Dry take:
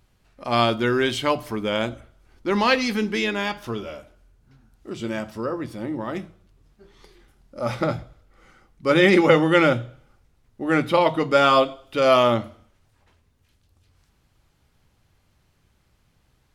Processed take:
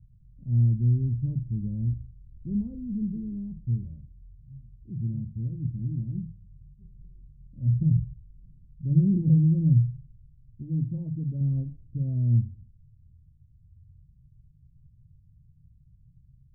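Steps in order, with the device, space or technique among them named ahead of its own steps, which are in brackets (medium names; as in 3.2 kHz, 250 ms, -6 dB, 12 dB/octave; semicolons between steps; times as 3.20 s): the neighbour's flat through the wall (low-pass 150 Hz 24 dB/octave; peaking EQ 140 Hz +6 dB 0.62 oct); 10.62–11.41 s: bass shelf 180 Hz -8 dB; trim +7.5 dB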